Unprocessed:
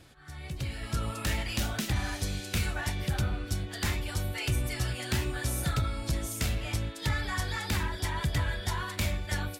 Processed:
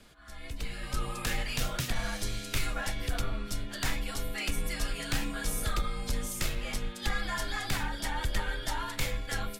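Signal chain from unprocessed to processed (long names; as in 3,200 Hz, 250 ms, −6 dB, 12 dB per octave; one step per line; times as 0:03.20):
frequency shifter −86 Hz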